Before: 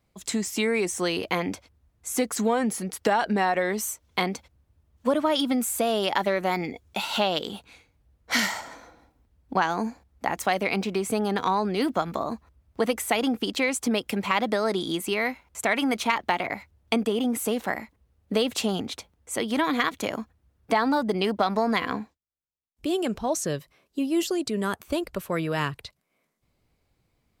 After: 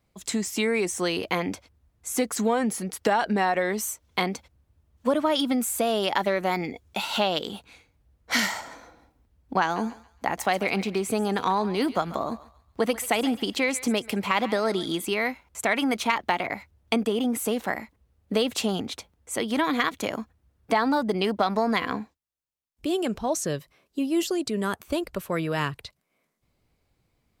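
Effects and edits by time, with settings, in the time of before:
9.62–15.05 s: thinning echo 138 ms, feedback 35%, high-pass 920 Hz, level -14 dB

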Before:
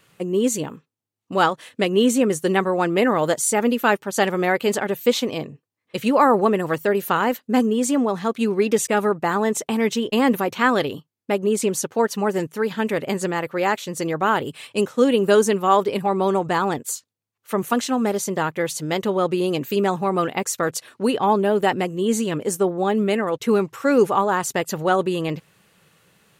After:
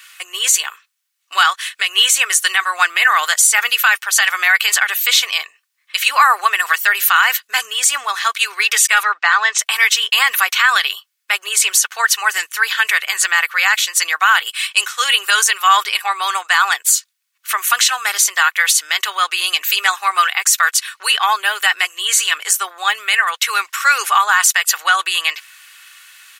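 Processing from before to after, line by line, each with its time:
9.03–9.59 s: low-pass 5.6 kHz 24 dB/octave
whole clip: high-pass 1.4 kHz 24 dB/octave; comb 2.7 ms, depth 32%; loudness maximiser +19 dB; trim -1 dB

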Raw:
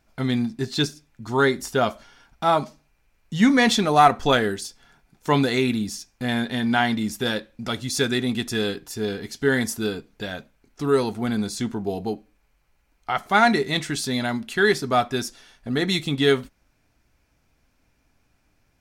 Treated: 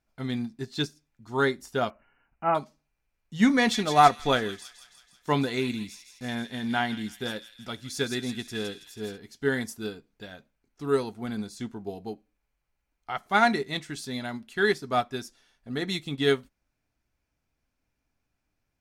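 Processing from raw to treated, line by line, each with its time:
1.90–2.55 s: brick-wall FIR low-pass 3 kHz
3.52–9.18 s: feedback echo behind a high-pass 163 ms, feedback 60%, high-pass 2.6 kHz, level -6 dB
whole clip: upward expansion 1.5:1, over -34 dBFS; trim -2 dB

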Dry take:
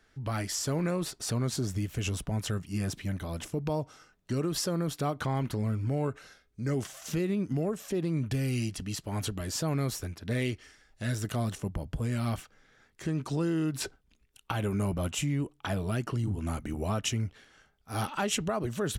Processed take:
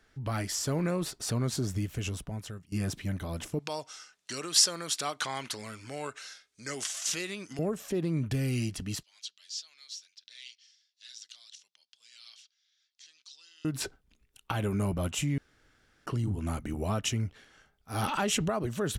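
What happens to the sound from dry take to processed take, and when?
1.80–2.72 s: fade out, to -17 dB
3.59–7.59 s: frequency weighting ITU-R 468
9.03–13.65 s: Butterworth band-pass 4.5 kHz, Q 1.6
15.38–16.06 s: room tone
18.03–18.50 s: level flattener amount 70%

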